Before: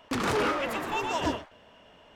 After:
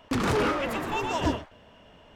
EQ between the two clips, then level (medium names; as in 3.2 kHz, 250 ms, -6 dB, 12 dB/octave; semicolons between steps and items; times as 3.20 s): bass shelf 230 Hz +8.5 dB; 0.0 dB